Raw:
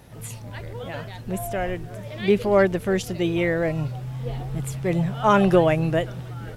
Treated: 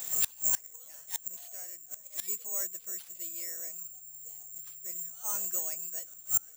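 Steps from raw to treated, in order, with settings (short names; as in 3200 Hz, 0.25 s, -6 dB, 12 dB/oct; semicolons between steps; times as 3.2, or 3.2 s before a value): flipped gate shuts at -26 dBFS, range -27 dB; careless resampling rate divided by 6×, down none, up zero stuff; HPF 1400 Hz 6 dB/oct; gain +3.5 dB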